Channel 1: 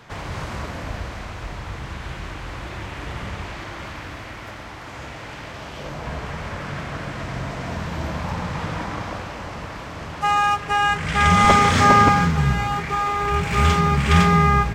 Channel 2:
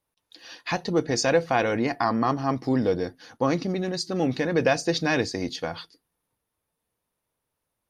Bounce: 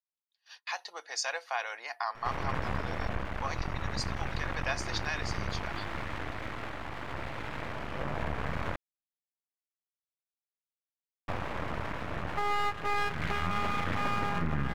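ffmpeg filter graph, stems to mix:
-filter_complex "[0:a]lowpass=f=2400:w=0.5412,lowpass=f=2400:w=1.3066,alimiter=limit=0.282:level=0:latency=1:release=50,aeval=exprs='max(val(0),0)':c=same,adelay=2150,volume=1.19,asplit=3[s0][s1][s2];[s0]atrim=end=8.76,asetpts=PTS-STARTPTS,afade=t=out:st=8.756:d=0.004:c=hsin[s3];[s1]atrim=start=8.76:end=11.28,asetpts=PTS-STARTPTS,volume=0[s4];[s2]atrim=start=11.28,asetpts=PTS-STARTPTS,afade=t=in:d=0.004:c=hsin[s5];[s3][s4][s5]concat=n=3:v=0:a=1[s6];[1:a]agate=range=0.0562:threshold=0.00708:ratio=16:detection=peak,highpass=f=800:w=0.5412,highpass=f=800:w=1.3066,volume=0.501[s7];[s6][s7]amix=inputs=2:normalize=0,alimiter=limit=0.106:level=0:latency=1:release=429"

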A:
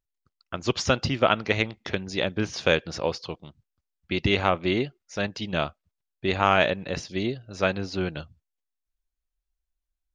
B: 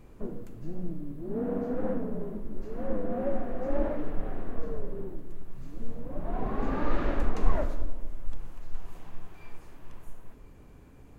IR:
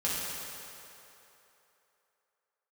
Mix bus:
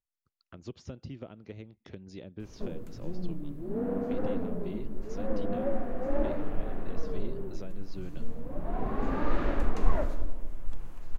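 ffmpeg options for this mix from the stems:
-filter_complex "[0:a]acompressor=threshold=0.0316:ratio=2,acrossover=split=470[s0][s1];[s1]acompressor=threshold=0.00562:ratio=10[s2];[s0][s2]amix=inputs=2:normalize=0,volume=0.355[s3];[1:a]adelay=2400,volume=0.944[s4];[s3][s4]amix=inputs=2:normalize=0"

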